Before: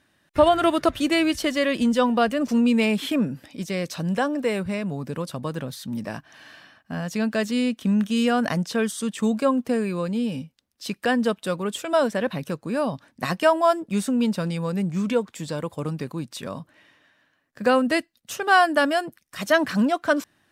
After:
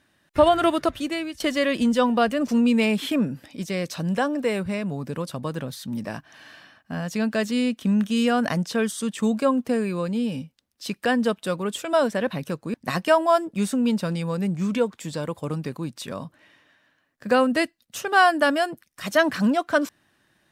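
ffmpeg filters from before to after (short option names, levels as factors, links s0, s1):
-filter_complex "[0:a]asplit=3[s0][s1][s2];[s0]atrim=end=1.4,asetpts=PTS-STARTPTS,afade=t=out:st=0.64:d=0.76:silence=0.16788[s3];[s1]atrim=start=1.4:end=12.742,asetpts=PTS-STARTPTS,afade=t=in:d=0.004:c=hsin:silence=0.16788[s4];[s2]atrim=start=13.088[s5];[s3][s4]concat=n=2:v=0:a=1[s6];[s6][s5]acrossfade=d=0.004:c1=hsin:c2=hsin"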